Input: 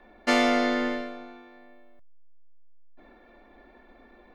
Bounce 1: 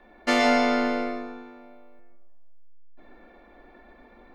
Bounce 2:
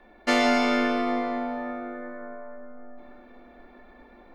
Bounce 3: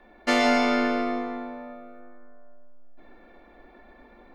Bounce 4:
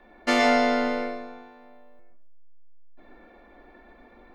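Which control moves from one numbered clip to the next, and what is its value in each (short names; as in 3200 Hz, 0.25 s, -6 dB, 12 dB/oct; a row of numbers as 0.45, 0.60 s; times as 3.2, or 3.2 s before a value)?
plate-style reverb, RT60: 1.1, 5.3, 2.5, 0.52 s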